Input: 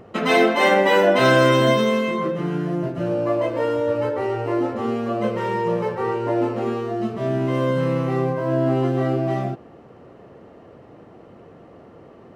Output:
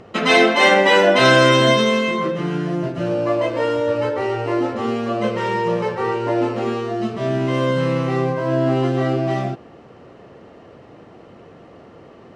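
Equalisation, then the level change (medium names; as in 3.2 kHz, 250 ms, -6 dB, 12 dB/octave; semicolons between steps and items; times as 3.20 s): distance through air 100 m; treble shelf 2.4 kHz +11 dB; treble shelf 8.4 kHz +8 dB; +1.5 dB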